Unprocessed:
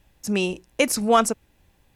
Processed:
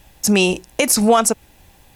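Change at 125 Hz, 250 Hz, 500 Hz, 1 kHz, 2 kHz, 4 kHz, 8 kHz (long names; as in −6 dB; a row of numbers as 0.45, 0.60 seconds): can't be measured, +7.0 dB, +5.0 dB, +3.0 dB, +5.5 dB, +7.5 dB, +10.0 dB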